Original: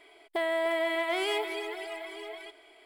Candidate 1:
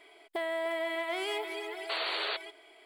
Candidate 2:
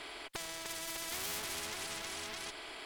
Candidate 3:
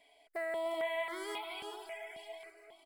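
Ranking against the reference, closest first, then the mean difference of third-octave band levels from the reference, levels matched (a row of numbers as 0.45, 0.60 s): 1, 3, 2; 2.5, 4.0, 16.5 dB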